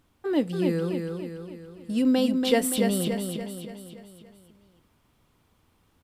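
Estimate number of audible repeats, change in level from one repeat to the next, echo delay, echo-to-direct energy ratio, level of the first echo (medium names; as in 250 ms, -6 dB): 6, -6.0 dB, 286 ms, -3.5 dB, -5.0 dB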